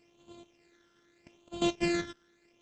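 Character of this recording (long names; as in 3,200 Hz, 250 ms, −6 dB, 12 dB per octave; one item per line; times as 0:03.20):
a buzz of ramps at a fixed pitch in blocks of 128 samples
phaser sweep stages 12, 0.81 Hz, lowest notch 770–1,800 Hz
Opus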